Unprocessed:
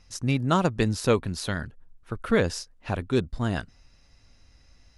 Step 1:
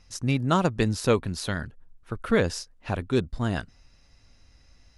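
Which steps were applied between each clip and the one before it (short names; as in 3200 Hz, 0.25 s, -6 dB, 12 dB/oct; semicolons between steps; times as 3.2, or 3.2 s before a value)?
nothing audible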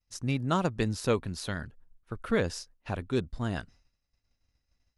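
expander -44 dBFS; gain -5 dB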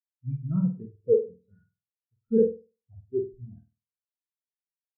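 flutter echo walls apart 8.4 m, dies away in 1.2 s; spectral expander 4:1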